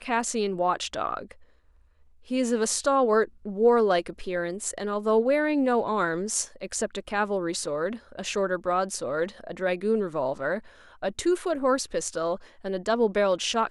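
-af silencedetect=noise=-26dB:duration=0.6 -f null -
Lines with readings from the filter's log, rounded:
silence_start: 1.19
silence_end: 2.31 | silence_duration: 1.12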